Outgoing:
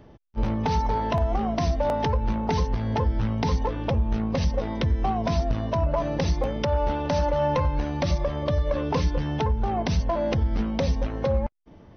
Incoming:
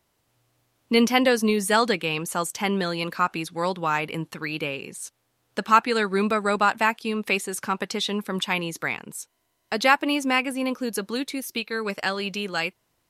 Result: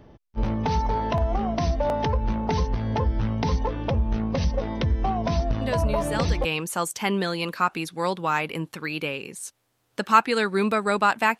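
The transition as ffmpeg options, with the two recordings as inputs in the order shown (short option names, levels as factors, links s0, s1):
-filter_complex "[1:a]asplit=2[s0][s1];[0:a]apad=whole_dur=11.39,atrim=end=11.39,atrim=end=6.452[s2];[s1]atrim=start=2.038:end=6.98[s3];[s0]atrim=start=1.2:end=2.04,asetpts=PTS-STARTPTS,volume=0.316,afade=t=in:d=0.004:c=hsin,afade=t=out:st=0.836:d=0.004:c=hsin,adelay=247401S[s4];[s2][s3]acrossfade=d=0.004:c1=hsin:c2=hsin[s5];[s5][s4]amix=inputs=2:normalize=0"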